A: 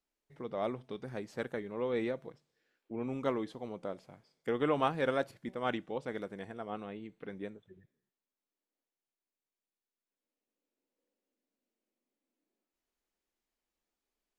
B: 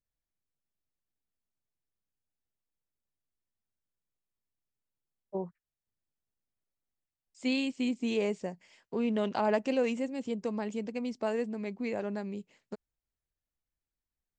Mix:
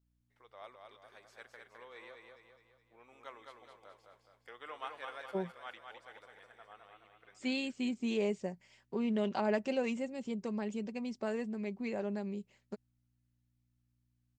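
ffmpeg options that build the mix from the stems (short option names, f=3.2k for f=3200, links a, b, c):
-filter_complex "[0:a]highpass=980,aeval=exprs='val(0)+0.000447*(sin(2*PI*60*n/s)+sin(2*PI*2*60*n/s)/2+sin(2*PI*3*60*n/s)/3+sin(2*PI*4*60*n/s)/4+sin(2*PI*5*60*n/s)/5)':c=same,volume=-9dB,asplit=2[a][b];[b]volume=-4.5dB[c];[1:a]aecho=1:1:5.2:0.4,volume=-4dB[d];[c]aecho=0:1:209|418|627|836|1045|1254|1463:1|0.49|0.24|0.118|0.0576|0.0282|0.0138[e];[a][d][e]amix=inputs=3:normalize=0"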